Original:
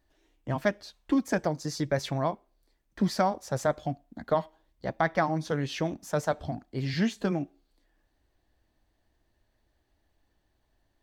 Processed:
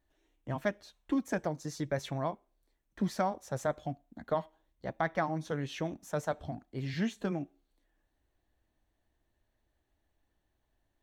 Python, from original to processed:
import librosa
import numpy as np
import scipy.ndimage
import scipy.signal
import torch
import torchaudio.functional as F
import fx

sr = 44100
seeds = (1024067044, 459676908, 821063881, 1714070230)

y = fx.peak_eq(x, sr, hz=4800.0, db=-9.0, octaves=0.22)
y = y * librosa.db_to_amplitude(-5.5)